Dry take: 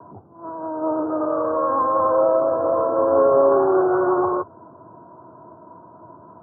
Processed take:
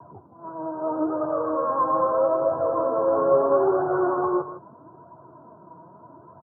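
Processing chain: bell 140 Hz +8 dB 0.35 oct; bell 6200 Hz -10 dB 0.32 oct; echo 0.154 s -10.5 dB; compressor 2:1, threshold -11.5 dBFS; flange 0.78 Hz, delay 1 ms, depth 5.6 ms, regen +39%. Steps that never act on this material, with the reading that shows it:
bell 6200 Hz: input band ends at 1500 Hz

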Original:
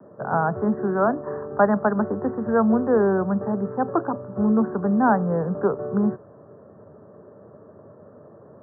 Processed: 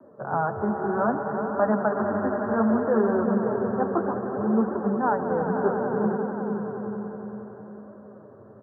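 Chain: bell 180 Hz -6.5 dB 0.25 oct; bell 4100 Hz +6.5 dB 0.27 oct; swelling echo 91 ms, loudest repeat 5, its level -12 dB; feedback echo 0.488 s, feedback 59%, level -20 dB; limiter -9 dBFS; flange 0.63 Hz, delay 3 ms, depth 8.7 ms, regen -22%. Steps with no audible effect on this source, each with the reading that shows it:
bell 4100 Hz: input band ends at 1700 Hz

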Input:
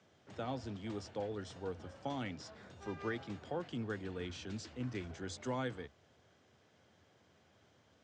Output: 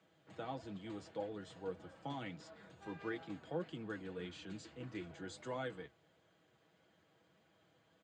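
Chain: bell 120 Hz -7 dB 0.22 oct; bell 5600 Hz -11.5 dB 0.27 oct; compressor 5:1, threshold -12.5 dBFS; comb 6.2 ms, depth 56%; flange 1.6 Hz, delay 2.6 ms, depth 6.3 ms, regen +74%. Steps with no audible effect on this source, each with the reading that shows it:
compressor, threshold -12.5 dBFS: input peak -27.0 dBFS

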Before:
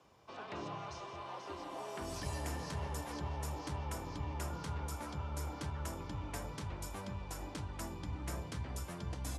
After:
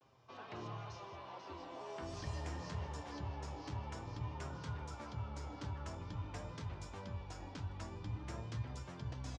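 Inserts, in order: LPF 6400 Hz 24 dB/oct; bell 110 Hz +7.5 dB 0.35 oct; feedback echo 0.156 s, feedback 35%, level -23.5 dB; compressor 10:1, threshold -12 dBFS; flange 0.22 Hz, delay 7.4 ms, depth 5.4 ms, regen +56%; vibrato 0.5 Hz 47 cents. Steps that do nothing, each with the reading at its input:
compressor, threshold -12 dBFS: input peak -25.5 dBFS

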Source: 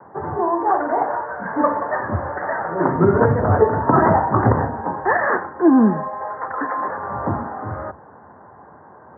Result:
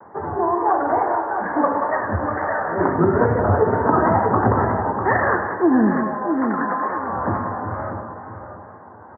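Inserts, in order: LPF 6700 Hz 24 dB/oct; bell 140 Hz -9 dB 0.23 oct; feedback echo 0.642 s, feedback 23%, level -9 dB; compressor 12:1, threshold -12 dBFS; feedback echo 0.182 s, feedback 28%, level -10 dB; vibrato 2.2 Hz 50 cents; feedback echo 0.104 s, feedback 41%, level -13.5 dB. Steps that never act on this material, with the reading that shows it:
LPF 6700 Hz: input band ends at 2000 Hz

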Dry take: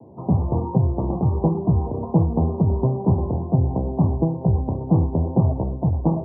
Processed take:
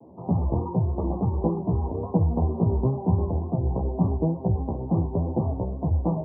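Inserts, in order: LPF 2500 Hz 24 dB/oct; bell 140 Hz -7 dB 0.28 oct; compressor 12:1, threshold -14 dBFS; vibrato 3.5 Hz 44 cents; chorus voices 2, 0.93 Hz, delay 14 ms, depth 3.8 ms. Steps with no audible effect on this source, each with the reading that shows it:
LPF 2500 Hz: input band ends at 1000 Hz

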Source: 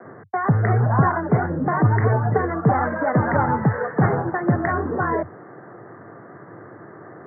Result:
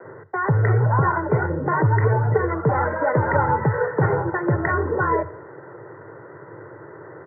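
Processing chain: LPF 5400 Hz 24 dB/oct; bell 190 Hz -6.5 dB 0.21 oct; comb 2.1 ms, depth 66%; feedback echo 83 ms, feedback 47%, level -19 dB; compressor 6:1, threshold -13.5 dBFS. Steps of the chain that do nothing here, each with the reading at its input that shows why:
LPF 5400 Hz: input band ends at 2000 Hz

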